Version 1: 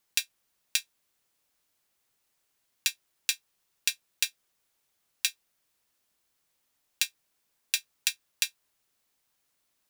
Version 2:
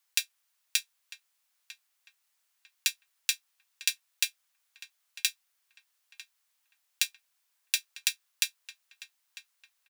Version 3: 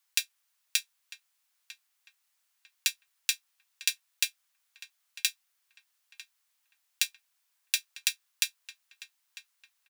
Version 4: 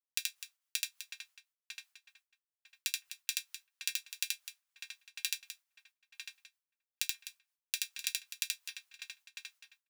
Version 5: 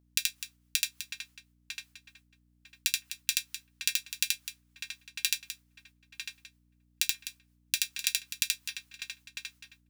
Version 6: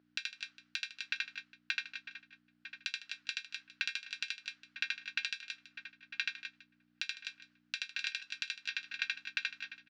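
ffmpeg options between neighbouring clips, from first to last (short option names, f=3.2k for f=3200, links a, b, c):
-filter_complex "[0:a]highpass=970,asplit=2[a][b];[b]adelay=949,lowpass=f=1.9k:p=1,volume=-12dB,asplit=2[c][d];[d]adelay=949,lowpass=f=1.9k:p=1,volume=0.44,asplit=2[e][f];[f]adelay=949,lowpass=f=1.9k:p=1,volume=0.44,asplit=2[g][h];[h]adelay=949,lowpass=f=1.9k:p=1,volume=0.44[i];[a][c][e][g][i]amix=inputs=5:normalize=0"
-af "highpass=540"
-filter_complex "[0:a]agate=range=-33dB:threshold=-56dB:ratio=3:detection=peak,acompressor=threshold=-32dB:ratio=6,asplit=2[a][b];[b]aecho=0:1:78.72|253.6:0.891|0.282[c];[a][c]amix=inputs=2:normalize=0"
-af "aeval=exprs='val(0)+0.000562*(sin(2*PI*60*n/s)+sin(2*PI*2*60*n/s)/2+sin(2*PI*3*60*n/s)/3+sin(2*PI*4*60*n/s)/4+sin(2*PI*5*60*n/s)/5)':c=same,lowshelf=f=290:g=-9.5,volume=6.5dB"
-af "acompressor=threshold=-37dB:ratio=6,highpass=350,equalizer=f=500:t=q:w=4:g=-5,equalizer=f=960:t=q:w=4:g=-6,equalizer=f=1.5k:t=q:w=4:g=10,equalizer=f=3.5k:t=q:w=4:g=-3,lowpass=f=4.2k:w=0.5412,lowpass=f=4.2k:w=1.3066,aecho=1:1:155:0.178,volume=8dB"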